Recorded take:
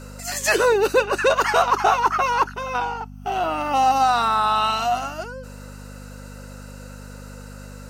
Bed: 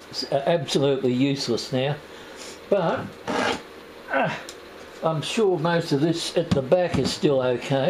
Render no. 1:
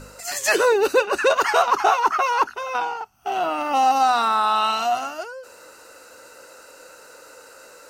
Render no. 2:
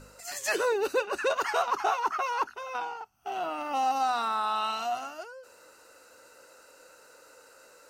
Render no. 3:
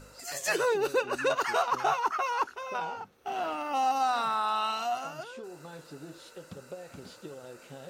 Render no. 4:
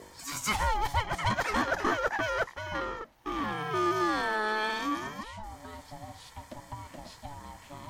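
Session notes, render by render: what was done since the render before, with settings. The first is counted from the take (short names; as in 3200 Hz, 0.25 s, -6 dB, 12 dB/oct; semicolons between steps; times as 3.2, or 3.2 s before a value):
de-hum 50 Hz, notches 5
gain -9.5 dB
add bed -24 dB
ring modulator 430 Hz; in parallel at -5 dB: soft clip -32 dBFS, distortion -8 dB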